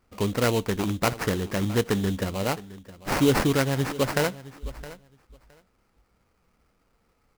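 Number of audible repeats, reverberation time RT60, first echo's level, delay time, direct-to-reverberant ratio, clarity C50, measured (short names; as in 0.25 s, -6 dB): 2, none, -17.5 dB, 0.665 s, none, none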